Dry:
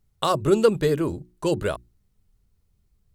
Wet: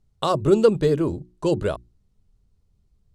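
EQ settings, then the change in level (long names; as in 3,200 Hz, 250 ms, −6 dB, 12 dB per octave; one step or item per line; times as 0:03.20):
high-frequency loss of the air 59 metres
parametric band 1,900 Hz −6 dB 1.6 octaves
+2.5 dB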